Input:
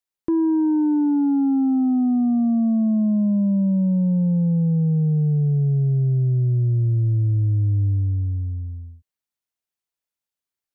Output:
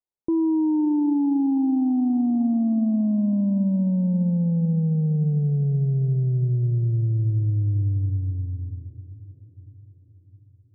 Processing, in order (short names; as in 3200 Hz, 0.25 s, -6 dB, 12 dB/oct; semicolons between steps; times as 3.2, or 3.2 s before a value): elliptic low-pass 950 Hz, stop band 60 dB; on a send: diffused feedback echo 0.576 s, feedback 53%, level -16 dB; on the sum: gain -2 dB